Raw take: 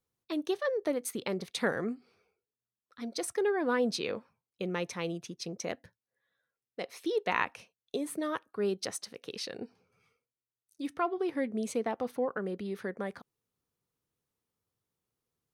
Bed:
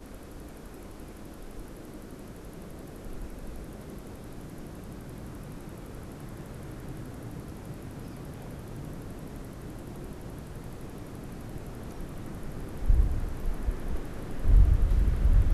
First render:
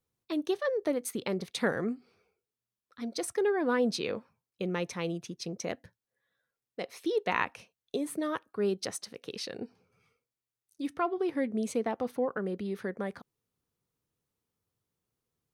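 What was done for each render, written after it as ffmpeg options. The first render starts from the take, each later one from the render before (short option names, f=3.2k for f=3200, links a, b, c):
-af "lowshelf=f=320:g=3.5"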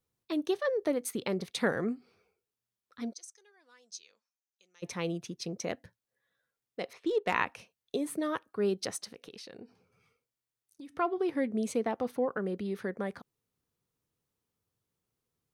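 -filter_complex "[0:a]asplit=3[a][b][c];[a]afade=t=out:st=3.12:d=0.02[d];[b]bandpass=f=6.3k:t=q:w=5.5,afade=t=in:st=3.12:d=0.02,afade=t=out:st=4.82:d=0.02[e];[c]afade=t=in:st=4.82:d=0.02[f];[d][e][f]amix=inputs=3:normalize=0,asettb=1/sr,asplit=3[g][h][i];[g]atrim=end=6.934[j];[h]atrim=start=6.93:end=7.34,asetpts=PTS-STARTPTS,afade=t=in:d=0.004:c=qsin,afade=t=out:st=0.406:d=0.004:c=qsin,adynamicsmooth=sensitivity=8:basefreq=2.6k[k];[i]atrim=start=7.336[l];[j][k]acrossfade=d=0.004:c1=hsin:c2=qsin[m];[m][l]acrossfade=d=0.004:c1=qsin:c2=hsin,asettb=1/sr,asplit=3[n][o][p];[n]atrim=end=9.134[q];[o]atrim=start=9.13:end=10.95,asetpts=PTS-STARTPTS,afade=t=in:d=0.004:c=qsin,afade=t=out:st=1.816:d=0.004:c=qsin,acompressor=threshold=-43dB:ratio=10:attack=3.2:release=140:knee=1:detection=peak[r];[p]atrim=start=10.946[s];[q][r]acrossfade=d=0.004:c1=hsin:c2=qsin[t];[t][s]acrossfade=d=0.004:c1=qsin:c2=hsin"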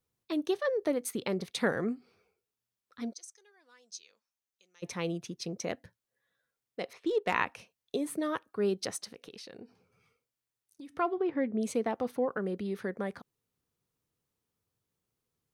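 -filter_complex "[0:a]asplit=3[a][b][c];[a]afade=t=out:st=11.15:d=0.02[d];[b]lowpass=2.5k,afade=t=in:st=11.15:d=0.02,afade=t=out:st=11.6:d=0.02[e];[c]afade=t=in:st=11.6:d=0.02[f];[d][e][f]amix=inputs=3:normalize=0"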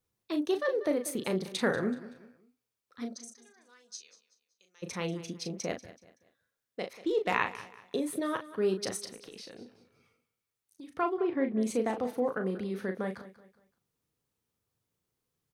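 -filter_complex "[0:a]asplit=2[a][b];[b]adelay=37,volume=-7dB[c];[a][c]amix=inputs=2:normalize=0,aecho=1:1:189|378|567:0.15|0.0539|0.0194"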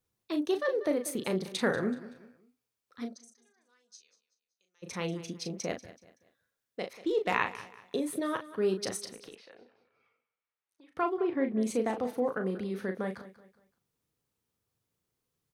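-filter_complex "[0:a]asettb=1/sr,asplit=3[a][b][c];[a]atrim=end=9.354[d];[b]atrim=start=9.35:end=10.97,asetpts=PTS-STARTPTS,afade=t=in:d=0.004:c=qsin,afade=t=out:st=1.616:d=0.004:c=qsin,acrossover=split=480 3000:gain=0.141 1 0.112[e][f][g];[e][f][g]amix=inputs=3:normalize=0[h];[c]atrim=start=10.966[i];[d][h]acrossfade=d=0.004:c1=hsin:c2=qsin[j];[j][i]acrossfade=d=0.004:c1=qsin:c2=hsin,asplit=3[k][l][m];[k]atrim=end=3.19,asetpts=PTS-STARTPTS,afade=t=out:st=3.05:d=0.14:silence=0.334965[n];[l]atrim=start=3.19:end=4.8,asetpts=PTS-STARTPTS,volume=-9.5dB[o];[m]atrim=start=4.8,asetpts=PTS-STARTPTS,afade=t=in:d=0.14:silence=0.334965[p];[n][o][p]concat=n=3:v=0:a=1"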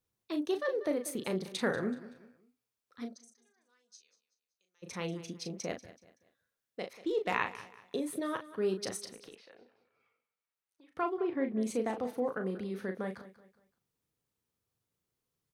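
-af "volume=-3dB"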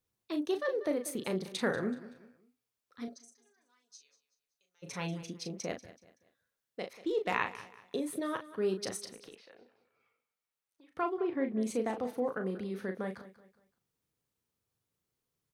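-filter_complex "[0:a]asettb=1/sr,asplit=3[a][b][c];[a]atrim=end=3.074[d];[b]atrim=start=3.07:end=5.23,asetpts=PTS-STARTPTS,afade=t=in:d=0.004:c=qsin,afade=t=out:st=2.156:d=0.004:c=qsin,aecho=1:1:7.1:0.7,atrim=end_sample=95256[e];[c]atrim=start=5.226[f];[d][e]acrossfade=d=0.004:c1=hsin:c2=qsin[g];[g][f]acrossfade=d=0.004:c1=qsin:c2=hsin"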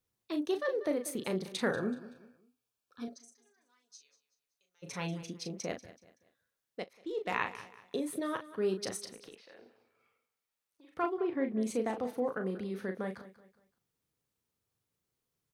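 -filter_complex "[0:a]asettb=1/sr,asplit=3[a][b][c];[a]atrim=end=1.714[d];[b]atrim=start=1.71:end=3.07,asetpts=PTS-STARTPTS,afade=t=in:d=0.004:c=qsin,afade=t=out:st=1.356:d=0.004:c=qsin,asuperstop=centerf=2000:order=8:qfactor=4.8[e];[c]atrim=start=3.066[f];[d][e]acrossfade=d=0.004:c1=hsin:c2=qsin[g];[g][f]acrossfade=d=0.004:c1=qsin:c2=hsin,asettb=1/sr,asplit=3[h][i][j];[h]atrim=end=9.444[k];[i]atrim=start=9.44:end=11.06,asetpts=PTS-STARTPTS,afade=t=in:d=0.004:c=qsin,afade=t=out:st=1.616:d=0.004:c=qsin,asplit=2[l][m];[m]adelay=46,volume=-2.5dB[n];[l][n]amix=inputs=2:normalize=0,atrim=end_sample=71442[o];[j]atrim=start=11.056[p];[k][o]acrossfade=d=0.004:c1=hsin:c2=qsin[q];[q][p]acrossfade=d=0.004:c1=qsin:c2=hsin,asplit=2[r][s];[r]atrim=end=6.84,asetpts=PTS-STARTPTS,afade=t=out:st=6.836:d=0.004:c=hsin:silence=0.188365[t];[s]atrim=start=6.84,asetpts=PTS-STARTPTS,afade=t=in:d=0.65:silence=0.188365[u];[t][u]concat=n=2:v=0:a=1"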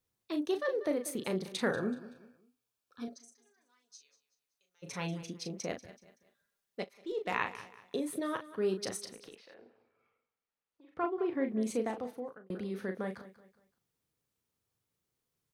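-filter_complex "[0:a]asettb=1/sr,asplit=3[a][b][c];[a]atrim=end=5.884[d];[b]atrim=start=5.88:end=7.12,asetpts=PTS-STARTPTS,afade=t=in:d=0.004:c=qsin,afade=t=out:st=1.236:d=0.004:c=qsin,aecho=1:1:5:0.65,atrim=end_sample=54684[e];[c]atrim=start=7.116[f];[d][e]acrossfade=d=0.004:c1=hsin:c2=qsin[g];[g][f]acrossfade=d=0.004:c1=qsin:c2=hsin,asettb=1/sr,asplit=3[h][i][j];[h]atrim=end=9.544[k];[i]atrim=start=9.54:end=11.18,asetpts=PTS-STARTPTS,afade=t=in:d=0.004:c=qsin,afade=t=out:st=1.636:d=0.004:c=qsin,lowpass=f=1.7k:p=1[l];[j]atrim=start=11.176[m];[k][l]acrossfade=d=0.004:c1=hsin:c2=qsin[n];[n][m]acrossfade=d=0.004:c1=qsin:c2=hsin,asplit=2[o][p];[o]atrim=end=12.5,asetpts=PTS-STARTPTS,afade=t=out:st=11.78:d=0.72[q];[p]atrim=start=12.5,asetpts=PTS-STARTPTS,afade=t=in:d=0.004:c=hsin[r];[q][r]concat=n=2:v=0:a=1"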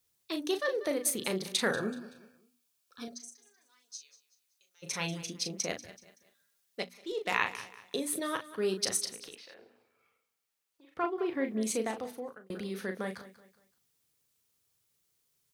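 -af "highshelf=f=2.2k:g=11.5,bandreject=f=60:t=h:w=6,bandreject=f=120:t=h:w=6,bandreject=f=180:t=h:w=6,bandreject=f=240:t=h:w=6,bandreject=f=300:t=h:w=6"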